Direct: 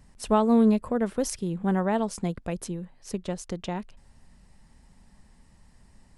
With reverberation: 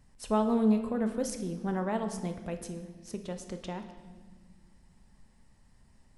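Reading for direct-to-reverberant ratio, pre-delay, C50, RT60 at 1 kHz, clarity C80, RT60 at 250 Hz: 6.0 dB, 8 ms, 9.0 dB, 1.3 s, 11.0 dB, 2.3 s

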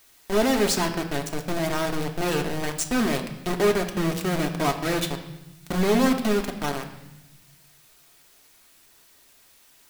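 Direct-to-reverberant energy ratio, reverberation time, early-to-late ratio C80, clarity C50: 3.0 dB, 0.90 s, 11.5 dB, 9.5 dB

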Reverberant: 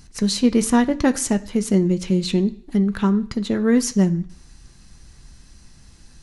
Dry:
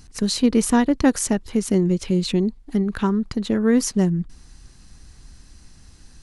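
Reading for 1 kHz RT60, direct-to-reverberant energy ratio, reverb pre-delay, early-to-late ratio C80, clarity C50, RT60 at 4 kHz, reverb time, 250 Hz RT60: 0.65 s, 7.5 dB, 3 ms, 21.5 dB, 18.0 dB, 0.60 s, 0.60 s, 0.55 s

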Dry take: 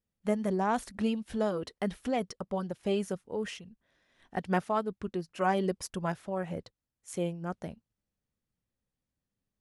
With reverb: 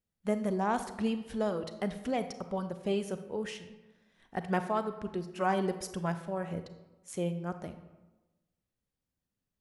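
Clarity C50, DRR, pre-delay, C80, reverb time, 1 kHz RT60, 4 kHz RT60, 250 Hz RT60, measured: 11.0 dB, 9.5 dB, 32 ms, 13.0 dB, 1.1 s, 1.1 s, 0.70 s, 1.2 s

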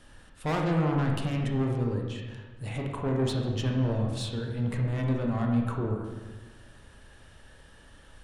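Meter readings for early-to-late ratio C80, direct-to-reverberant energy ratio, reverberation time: 5.0 dB, 0.5 dB, 1.2 s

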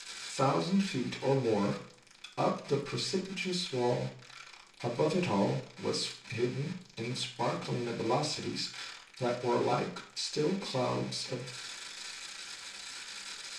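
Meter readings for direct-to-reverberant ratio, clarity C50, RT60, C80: −8.0 dB, 9.5 dB, 0.50 s, 14.0 dB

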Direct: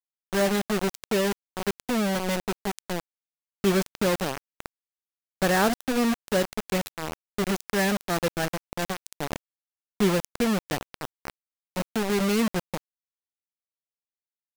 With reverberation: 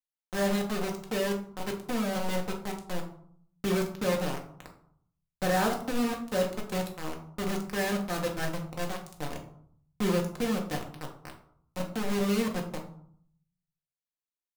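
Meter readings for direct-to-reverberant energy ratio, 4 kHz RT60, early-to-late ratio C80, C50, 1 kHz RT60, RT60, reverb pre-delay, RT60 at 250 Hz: 0.5 dB, 0.35 s, 12.5 dB, 8.5 dB, 0.65 s, 0.65 s, 4 ms, 0.80 s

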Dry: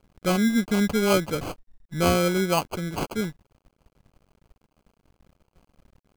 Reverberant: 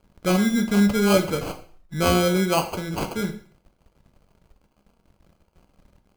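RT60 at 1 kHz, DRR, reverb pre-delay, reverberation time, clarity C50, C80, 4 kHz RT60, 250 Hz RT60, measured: 0.50 s, 6.5 dB, 5 ms, 0.50 s, 11.5 dB, 15.5 dB, 0.45 s, 0.50 s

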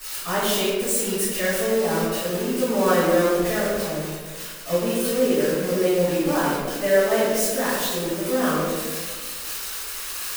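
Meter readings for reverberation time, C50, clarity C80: 1.6 s, −2.0 dB, 0.5 dB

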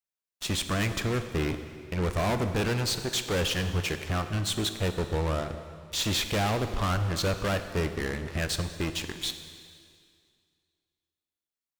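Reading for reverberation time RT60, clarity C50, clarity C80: 2.2 s, 9.0 dB, 10.0 dB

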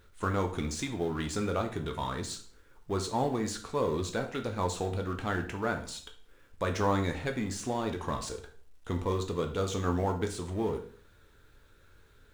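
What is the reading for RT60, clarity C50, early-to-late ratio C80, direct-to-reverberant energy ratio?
0.50 s, 10.5 dB, 15.0 dB, 4.0 dB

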